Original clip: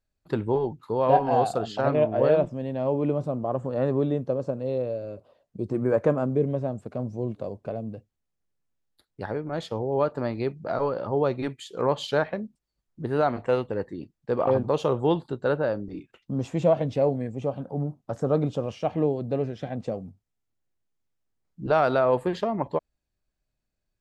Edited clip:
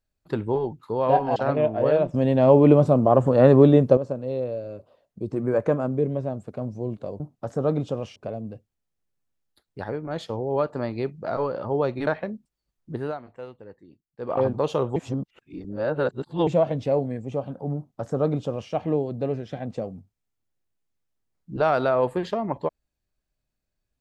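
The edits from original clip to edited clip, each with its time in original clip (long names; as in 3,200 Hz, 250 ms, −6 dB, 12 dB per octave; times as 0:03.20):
0:01.36–0:01.74: remove
0:02.52–0:04.35: clip gain +10.5 dB
0:11.49–0:12.17: remove
0:13.04–0:14.50: duck −15 dB, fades 0.24 s
0:15.06–0:16.57: reverse
0:17.86–0:18.82: duplicate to 0:07.58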